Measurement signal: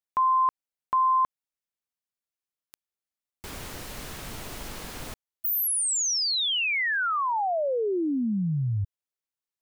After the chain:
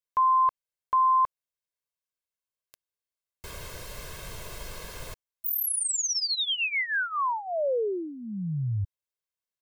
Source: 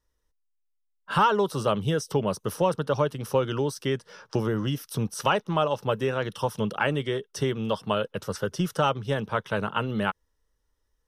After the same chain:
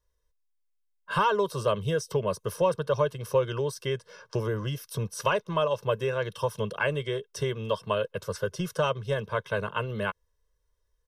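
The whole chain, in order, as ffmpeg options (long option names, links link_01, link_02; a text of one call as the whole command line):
ffmpeg -i in.wav -af "aecho=1:1:1.9:0.71,volume=-4dB" out.wav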